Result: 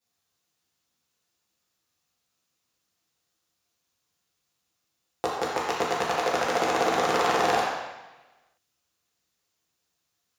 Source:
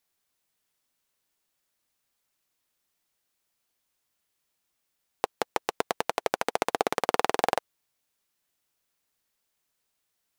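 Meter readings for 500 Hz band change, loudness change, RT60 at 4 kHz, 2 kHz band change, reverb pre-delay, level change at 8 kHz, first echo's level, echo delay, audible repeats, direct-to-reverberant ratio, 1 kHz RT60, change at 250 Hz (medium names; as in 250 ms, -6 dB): +4.0 dB, +4.0 dB, 1.1 s, +4.5 dB, 3 ms, +3.0 dB, no echo, no echo, no echo, -10.0 dB, 1.1 s, +5.0 dB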